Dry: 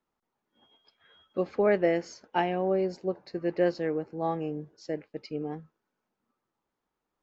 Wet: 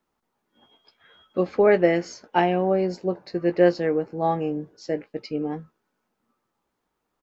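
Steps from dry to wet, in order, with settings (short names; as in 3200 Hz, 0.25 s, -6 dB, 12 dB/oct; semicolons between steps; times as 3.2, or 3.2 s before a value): doubler 17 ms -10.5 dB; gain +6 dB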